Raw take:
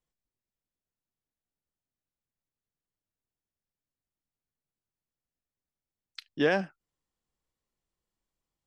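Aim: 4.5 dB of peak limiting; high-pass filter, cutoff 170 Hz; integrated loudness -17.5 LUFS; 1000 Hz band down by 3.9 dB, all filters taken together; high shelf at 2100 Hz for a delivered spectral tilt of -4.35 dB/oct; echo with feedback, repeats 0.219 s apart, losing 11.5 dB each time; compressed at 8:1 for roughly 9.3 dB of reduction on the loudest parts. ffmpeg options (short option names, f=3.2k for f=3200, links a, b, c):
-af "highpass=170,equalizer=f=1k:t=o:g=-4.5,highshelf=f=2.1k:g=-7,acompressor=threshold=-31dB:ratio=8,alimiter=level_in=4.5dB:limit=-24dB:level=0:latency=1,volume=-4.5dB,aecho=1:1:219|438|657:0.266|0.0718|0.0194,volume=25.5dB"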